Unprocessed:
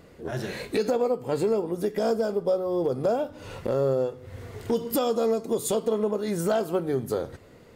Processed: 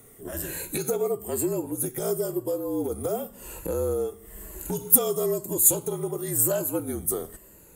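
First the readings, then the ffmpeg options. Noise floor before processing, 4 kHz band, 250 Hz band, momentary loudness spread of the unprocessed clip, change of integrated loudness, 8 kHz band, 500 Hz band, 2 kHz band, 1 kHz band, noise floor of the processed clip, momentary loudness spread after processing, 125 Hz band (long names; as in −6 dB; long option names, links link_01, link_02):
−51 dBFS, −4.0 dB, −2.0 dB, 8 LU, +1.5 dB, +14.5 dB, −3.5 dB, −4.0 dB, −6.0 dB, −52 dBFS, 15 LU, −1.0 dB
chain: -af "afftfilt=real='re*pow(10,8/40*sin(2*PI*(1.4*log(max(b,1)*sr/1024/100)/log(2)-(-1)*(pts-256)/sr)))':imag='im*pow(10,8/40*sin(2*PI*(1.4*log(max(b,1)*sr/1024/100)/log(2)-(-1)*(pts-256)/sr)))':win_size=1024:overlap=0.75,afreqshift=-51,aexciter=amount=5.9:drive=10:freq=7300,volume=-4.5dB"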